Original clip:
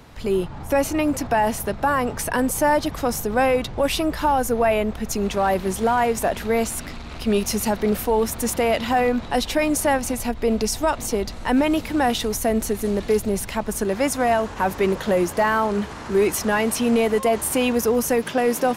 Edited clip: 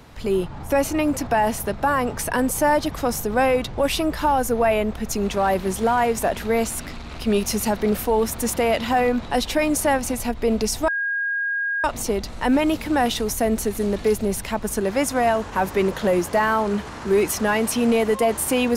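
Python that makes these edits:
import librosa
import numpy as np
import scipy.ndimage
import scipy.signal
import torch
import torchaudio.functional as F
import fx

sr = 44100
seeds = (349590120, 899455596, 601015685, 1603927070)

y = fx.edit(x, sr, fx.insert_tone(at_s=10.88, length_s=0.96, hz=1630.0, db=-21.0), tone=tone)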